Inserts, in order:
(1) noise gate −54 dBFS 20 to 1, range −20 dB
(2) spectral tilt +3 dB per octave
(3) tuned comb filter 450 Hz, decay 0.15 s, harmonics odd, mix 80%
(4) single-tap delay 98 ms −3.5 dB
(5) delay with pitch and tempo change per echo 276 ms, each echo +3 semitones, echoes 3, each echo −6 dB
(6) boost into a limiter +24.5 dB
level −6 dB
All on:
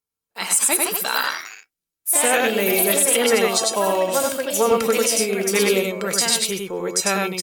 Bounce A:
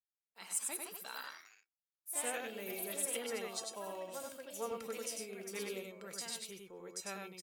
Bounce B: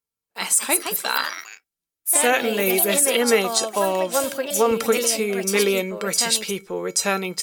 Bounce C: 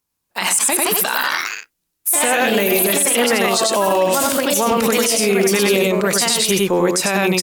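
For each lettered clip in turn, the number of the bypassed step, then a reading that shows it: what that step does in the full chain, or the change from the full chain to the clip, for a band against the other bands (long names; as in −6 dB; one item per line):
6, change in crest factor +8.0 dB
4, change in integrated loudness −1.5 LU
3, 250 Hz band +3.0 dB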